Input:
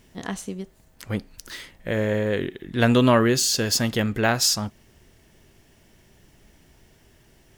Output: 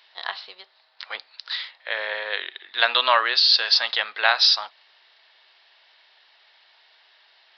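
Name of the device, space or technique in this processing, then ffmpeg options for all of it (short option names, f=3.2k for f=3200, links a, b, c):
musical greeting card: -af "aresample=11025,aresample=44100,highpass=f=790:w=0.5412,highpass=f=790:w=1.3066,equalizer=f=3.9k:t=o:w=0.34:g=10.5,volume=5dB"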